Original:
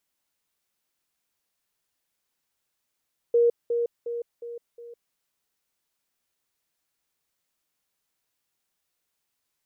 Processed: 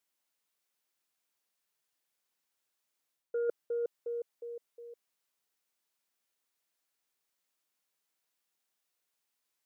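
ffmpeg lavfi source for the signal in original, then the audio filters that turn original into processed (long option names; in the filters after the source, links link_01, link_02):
-f lavfi -i "aevalsrc='pow(10,(-16-6*floor(t/0.36))/20)*sin(2*PI*472*t)*clip(min(mod(t,0.36),0.16-mod(t,0.36))/0.005,0,1)':duration=1.8:sample_rate=44100"
-af "highpass=frequency=270:poles=1,aeval=exprs='0.141*(cos(1*acos(clip(val(0)/0.141,-1,1)))-cos(1*PI/2))+0.0158*(cos(3*acos(clip(val(0)/0.141,-1,1)))-cos(3*PI/2))':channel_layout=same,areverse,acompressor=threshold=-31dB:ratio=6,areverse"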